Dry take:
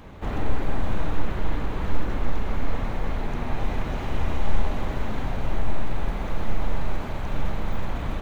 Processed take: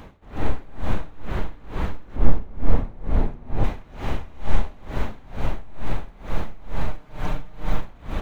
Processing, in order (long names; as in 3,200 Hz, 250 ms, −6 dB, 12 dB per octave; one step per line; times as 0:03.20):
0:02.16–0:03.64: tilt shelving filter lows +6.5 dB, about 910 Hz
0:06.87–0:07.81: comb filter 6.6 ms, depth 65%
tremolo with a sine in dB 2.2 Hz, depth 24 dB
level +4 dB